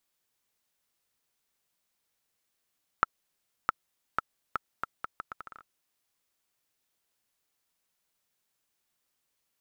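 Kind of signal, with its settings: bouncing ball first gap 0.66 s, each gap 0.75, 1.32 kHz, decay 19 ms -7.5 dBFS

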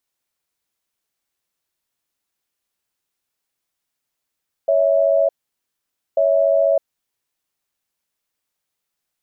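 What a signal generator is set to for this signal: cadence 559 Hz, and 654 Hz, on 0.61 s, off 0.88 s, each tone -15.5 dBFS 2.93 s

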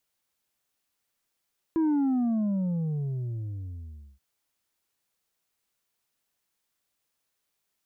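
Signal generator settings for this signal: sub drop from 330 Hz, over 2.43 s, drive 4 dB, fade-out 2.32 s, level -22 dB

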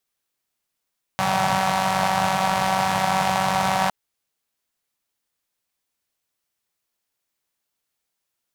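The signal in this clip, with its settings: four-cylinder engine model, steady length 2.71 s, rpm 5700, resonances 150/780 Hz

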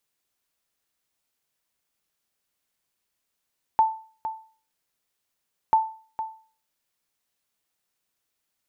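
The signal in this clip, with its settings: sonar ping 884 Hz, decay 0.41 s, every 1.94 s, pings 2, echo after 0.46 s, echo -11.5 dB -11.5 dBFS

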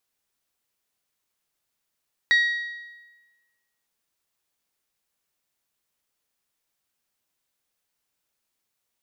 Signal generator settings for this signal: metal hit bell, lowest mode 1.9 kHz, decay 1.24 s, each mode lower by 9.5 dB, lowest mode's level -14 dB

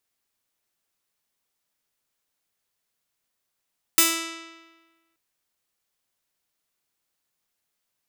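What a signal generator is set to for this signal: plucked string E4, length 1.18 s, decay 1.35 s, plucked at 0.41, bright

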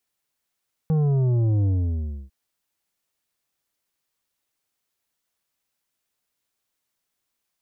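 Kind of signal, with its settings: sub drop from 160 Hz, over 1.40 s, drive 8.5 dB, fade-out 0.65 s, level -18.5 dB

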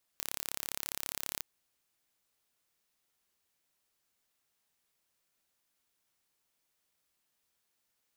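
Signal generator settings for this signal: pulse train 34.8 per s, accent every 0, -9 dBFS 1.22 s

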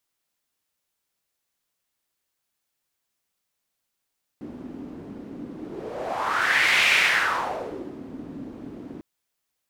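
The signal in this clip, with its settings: whoosh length 4.60 s, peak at 2.47 s, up 1.47 s, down 1.19 s, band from 270 Hz, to 2.4 kHz, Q 3.5, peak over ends 19.5 dB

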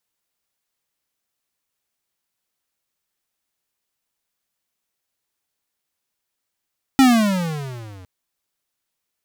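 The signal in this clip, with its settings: gliding synth tone square, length 1.06 s, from 274 Hz, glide -19.5 st, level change -31 dB, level -10 dB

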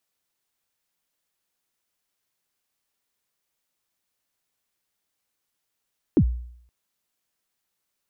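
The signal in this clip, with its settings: kick drum length 0.52 s, from 380 Hz, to 60 Hz, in 72 ms, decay 0.66 s, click off, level -11 dB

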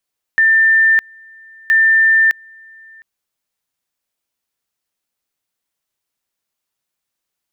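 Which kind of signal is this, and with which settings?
two-level tone 1.79 kHz -8 dBFS, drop 30 dB, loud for 0.61 s, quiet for 0.71 s, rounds 2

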